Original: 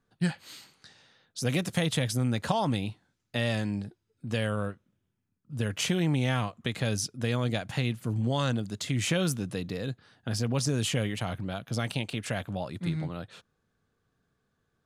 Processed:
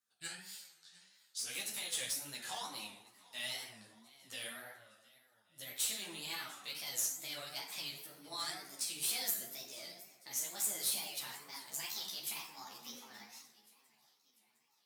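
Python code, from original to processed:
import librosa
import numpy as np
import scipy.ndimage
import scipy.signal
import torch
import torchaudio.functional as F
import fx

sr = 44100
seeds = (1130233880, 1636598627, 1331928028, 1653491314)

p1 = fx.pitch_glide(x, sr, semitones=7.5, runs='starting unshifted')
p2 = np.diff(p1, prepend=0.0)
p3 = p2 + fx.echo_feedback(p2, sr, ms=703, feedback_pct=54, wet_db=-22, dry=0)
p4 = fx.rev_plate(p3, sr, seeds[0], rt60_s=1.1, hf_ratio=0.5, predelay_ms=0, drr_db=0.5)
p5 = fx.wow_flutter(p4, sr, seeds[1], rate_hz=2.1, depth_cents=120.0)
p6 = (np.mod(10.0 ** (30.0 / 20.0) * p5 + 1.0, 2.0) - 1.0) / 10.0 ** (30.0 / 20.0)
p7 = p5 + (p6 * 10.0 ** (-11.0 / 20.0))
p8 = fx.ensemble(p7, sr)
y = p8 * 10.0 ** (1.0 / 20.0)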